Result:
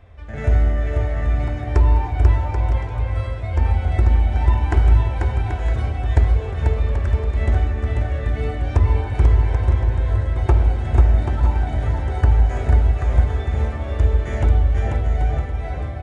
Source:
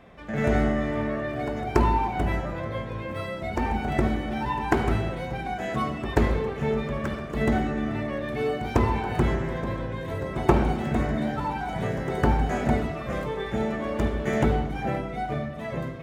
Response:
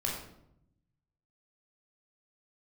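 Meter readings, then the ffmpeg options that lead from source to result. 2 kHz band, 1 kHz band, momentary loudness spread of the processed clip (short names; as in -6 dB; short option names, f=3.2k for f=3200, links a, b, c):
-1.5 dB, -2.0 dB, 6 LU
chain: -filter_complex "[0:a]aresample=22050,aresample=44100,lowshelf=f=120:t=q:w=3:g=13,acompressor=threshold=-7dB:ratio=6,bandreject=f=1.1k:w=26,asplit=2[a][b];[b]aecho=0:1:490|784|960.4|1066|1130:0.631|0.398|0.251|0.158|0.1[c];[a][c]amix=inputs=2:normalize=0,volume=-3dB"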